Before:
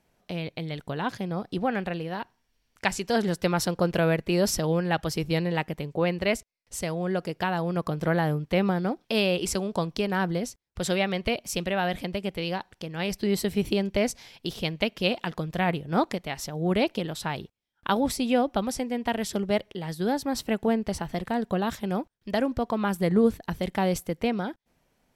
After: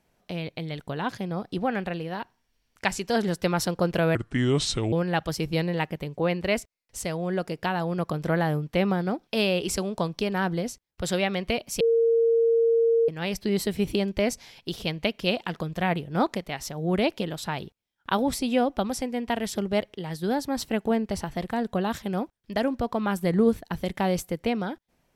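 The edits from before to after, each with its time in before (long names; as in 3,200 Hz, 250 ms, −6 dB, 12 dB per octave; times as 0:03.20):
0:04.15–0:04.70: play speed 71%
0:11.58–0:12.86: beep over 460 Hz −17.5 dBFS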